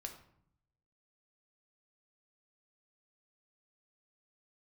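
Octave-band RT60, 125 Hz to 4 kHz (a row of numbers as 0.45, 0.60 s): 1.2, 0.95, 0.65, 0.65, 0.55, 0.40 s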